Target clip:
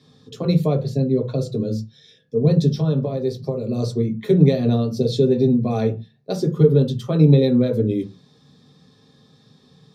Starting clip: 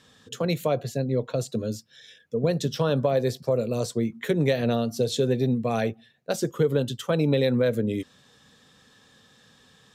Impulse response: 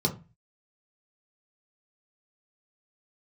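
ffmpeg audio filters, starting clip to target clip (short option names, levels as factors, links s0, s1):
-filter_complex "[0:a]asplit=3[s0][s1][s2];[s0]afade=t=out:st=2.68:d=0.02[s3];[s1]acompressor=threshold=0.0631:ratio=6,afade=t=in:st=2.68:d=0.02,afade=t=out:st=3.77:d=0.02[s4];[s2]afade=t=in:st=3.77:d=0.02[s5];[s3][s4][s5]amix=inputs=3:normalize=0[s6];[1:a]atrim=start_sample=2205,afade=t=out:st=0.21:d=0.01,atrim=end_sample=9702[s7];[s6][s7]afir=irnorm=-1:irlink=0,volume=0.316"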